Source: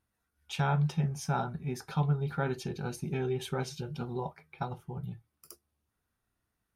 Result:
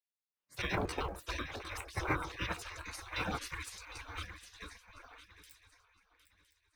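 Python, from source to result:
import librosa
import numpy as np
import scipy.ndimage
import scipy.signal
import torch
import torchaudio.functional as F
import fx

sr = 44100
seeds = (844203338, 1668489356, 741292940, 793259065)

p1 = fx.pitch_trill(x, sr, semitones=8.0, every_ms=77)
p2 = fx.lowpass(p1, sr, hz=2200.0, slope=6)
p3 = fx.peak_eq(p2, sr, hz=760.0, db=7.0, octaves=1.4)
p4 = fx.hum_notches(p3, sr, base_hz=60, count=4)
p5 = p4 + fx.echo_swing(p4, sr, ms=1011, ratio=3, feedback_pct=40, wet_db=-10.0, dry=0)
p6 = fx.spec_gate(p5, sr, threshold_db=-25, keep='weak')
p7 = fx.quant_float(p6, sr, bits=2)
p8 = p6 + F.gain(torch.from_numpy(p7), -6.5).numpy()
p9 = fx.peak_eq(p8, sr, hz=100.0, db=12.0, octaves=2.5)
p10 = fx.band_widen(p9, sr, depth_pct=40)
y = F.gain(torch.from_numpy(p10), 6.5).numpy()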